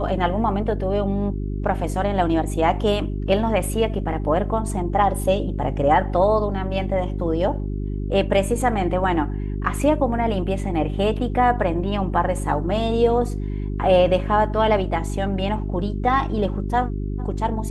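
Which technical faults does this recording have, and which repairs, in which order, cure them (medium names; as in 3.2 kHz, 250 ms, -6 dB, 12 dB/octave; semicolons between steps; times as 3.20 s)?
hum 50 Hz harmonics 8 -26 dBFS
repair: de-hum 50 Hz, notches 8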